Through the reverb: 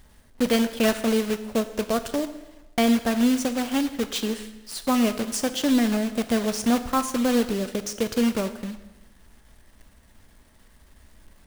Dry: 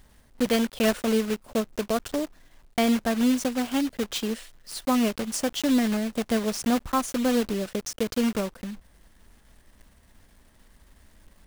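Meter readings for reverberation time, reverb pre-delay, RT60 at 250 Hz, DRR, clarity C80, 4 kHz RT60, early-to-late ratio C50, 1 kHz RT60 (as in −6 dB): 1.1 s, 3 ms, 1.1 s, 9.5 dB, 13.5 dB, 1.0 s, 12.0 dB, 1.1 s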